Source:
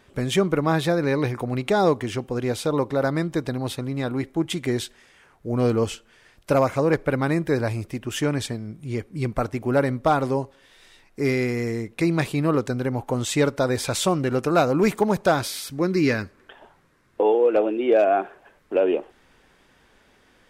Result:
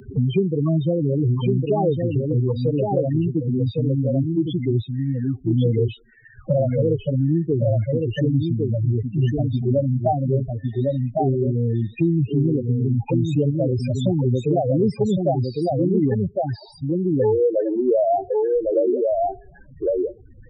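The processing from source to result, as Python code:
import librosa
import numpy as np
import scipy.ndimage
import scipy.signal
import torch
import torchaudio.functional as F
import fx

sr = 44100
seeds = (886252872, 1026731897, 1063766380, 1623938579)

p1 = fx.peak_eq(x, sr, hz=110.0, db=6.5, octaves=1.0)
p2 = fx.spec_topn(p1, sr, count=4)
p3 = p2 + fx.echo_single(p2, sr, ms=1106, db=-5.0, dry=0)
p4 = fx.band_squash(p3, sr, depth_pct=70)
y = p4 * librosa.db_to_amplitude(2.0)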